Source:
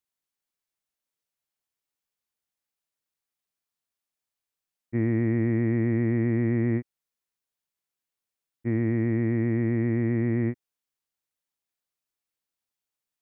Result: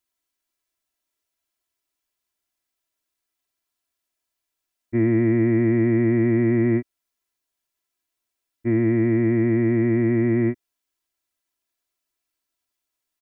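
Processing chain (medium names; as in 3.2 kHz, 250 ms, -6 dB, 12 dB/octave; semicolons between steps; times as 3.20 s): comb 3 ms, depth 74%; trim +4 dB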